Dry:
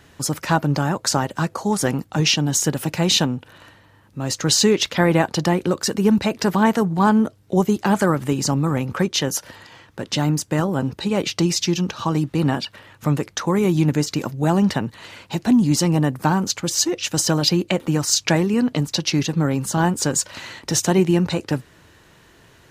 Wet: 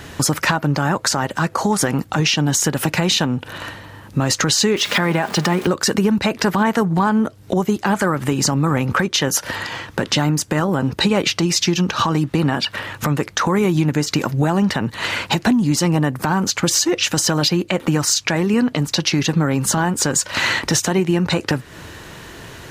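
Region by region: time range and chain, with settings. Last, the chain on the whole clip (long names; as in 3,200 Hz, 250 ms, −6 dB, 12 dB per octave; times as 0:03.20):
0:04.76–0:05.67: converter with a step at zero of −30.5 dBFS + high-pass filter 130 Hz + comb filter 4.9 ms, depth 36%
whole clip: downward compressor 12 to 1, threshold −28 dBFS; dynamic equaliser 1,600 Hz, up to +5 dB, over −47 dBFS, Q 0.78; boost into a limiter +20 dB; level −5.5 dB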